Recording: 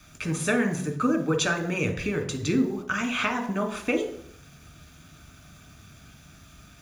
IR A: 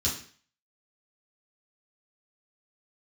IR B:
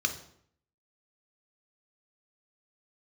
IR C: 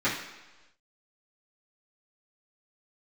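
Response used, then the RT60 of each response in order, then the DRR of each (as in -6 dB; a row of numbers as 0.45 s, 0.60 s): B; 0.45 s, 0.65 s, 1.1 s; -8.0 dB, 5.5 dB, -13.5 dB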